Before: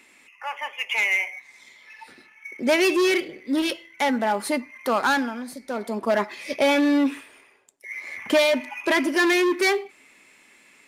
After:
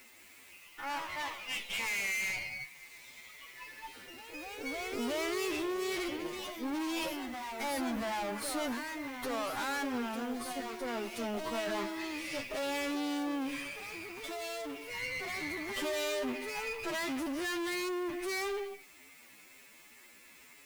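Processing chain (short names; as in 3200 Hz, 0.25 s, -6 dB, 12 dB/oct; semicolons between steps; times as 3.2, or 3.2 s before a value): tube stage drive 34 dB, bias 0.7; requantised 10-bit, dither triangular; time stretch by phase-locked vocoder 1.9×; echoes that change speed 0.192 s, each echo +2 st, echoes 3, each echo -6 dB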